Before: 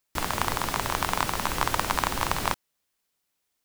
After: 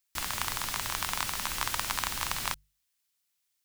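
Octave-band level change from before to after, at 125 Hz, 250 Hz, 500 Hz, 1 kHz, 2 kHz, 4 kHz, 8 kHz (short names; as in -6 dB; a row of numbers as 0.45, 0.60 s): -9.5, -12.5, -13.5, -8.5, -4.5, -1.0, 0.0 dB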